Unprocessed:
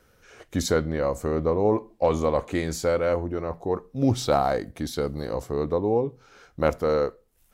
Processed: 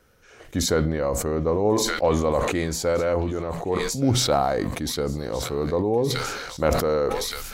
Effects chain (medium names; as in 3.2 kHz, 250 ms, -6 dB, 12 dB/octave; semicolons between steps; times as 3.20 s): feedback echo behind a high-pass 1172 ms, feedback 37%, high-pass 2.1 kHz, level -10 dB; decay stretcher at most 32 dB/s